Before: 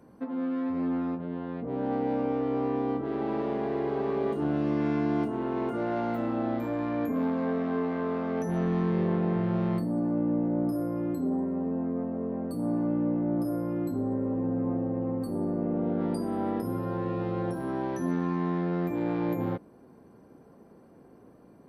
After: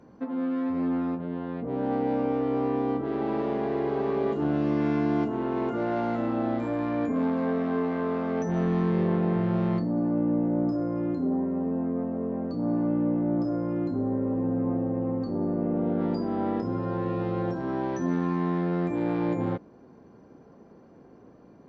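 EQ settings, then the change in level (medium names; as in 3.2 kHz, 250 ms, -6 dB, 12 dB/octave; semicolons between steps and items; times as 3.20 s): brick-wall FIR low-pass 7.6 kHz; +2.0 dB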